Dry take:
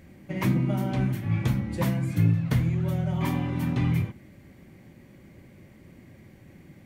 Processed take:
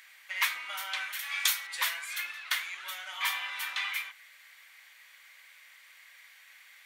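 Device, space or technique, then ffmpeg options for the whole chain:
headphones lying on a table: -filter_complex "[0:a]asettb=1/sr,asplit=3[s0][s1][s2];[s0]atrim=end=1.194[s3];[s1]atrim=start=1.19:end=1.67,asetpts=PTS-STARTPTS,afade=t=in:d=0.004:c=qsin,afade=t=out:st=0.476:d=0.004:c=qsin,bass=f=250:g=-14,treble=f=4000:g=12[s4];[s2]atrim=start=1.666[s5];[s3][s4]acrossfade=d=0.004:c1=hsin:c2=qsin[s6];[s6][s5]acrossfade=d=0.004:c1=qsin:c2=hsin,highpass=f=1300:w=0.5412,highpass=f=1300:w=1.3066,equalizer=f=3600:t=o:w=0.46:g=5,volume=2.51"

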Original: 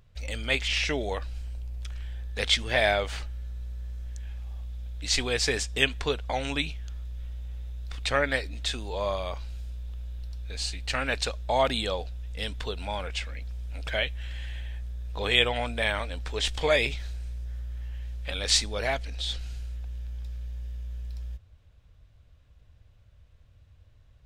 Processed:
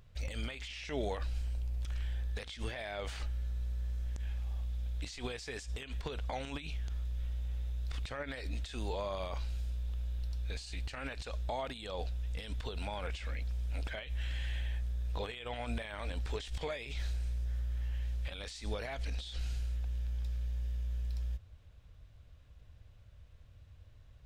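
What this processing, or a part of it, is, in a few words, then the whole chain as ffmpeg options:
de-esser from a sidechain: -filter_complex "[0:a]asplit=2[s0][s1];[s1]highpass=f=4400:p=1,apad=whole_len=1069590[s2];[s0][s2]sidechaincompress=threshold=0.00562:ratio=12:attack=0.58:release=51"

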